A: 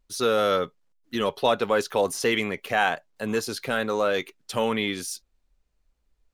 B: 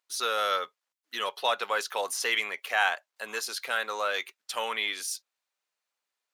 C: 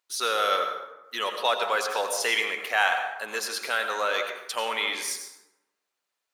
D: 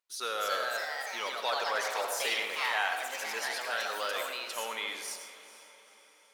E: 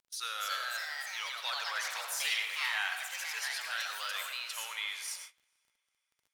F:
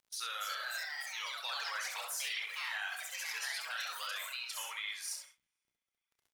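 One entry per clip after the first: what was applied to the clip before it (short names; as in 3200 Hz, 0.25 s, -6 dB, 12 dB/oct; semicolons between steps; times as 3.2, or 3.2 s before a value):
HPF 920 Hz 12 dB/oct
bell 360 Hz +2 dB; plate-style reverb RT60 1 s, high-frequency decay 0.55×, pre-delay 75 ms, DRR 5.5 dB; gain +2 dB
diffused feedback echo 0.459 s, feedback 51%, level -15 dB; echoes that change speed 0.313 s, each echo +3 st, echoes 3; gain -8.5 dB
HPF 1500 Hz 12 dB/oct; gate -46 dBFS, range -23 dB; crackle 24/s -54 dBFS
reverb removal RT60 1.2 s; limiter -28.5 dBFS, peak gain reduction 7.5 dB; on a send: early reflections 30 ms -9 dB, 66 ms -6 dB; on the sum: gain -1 dB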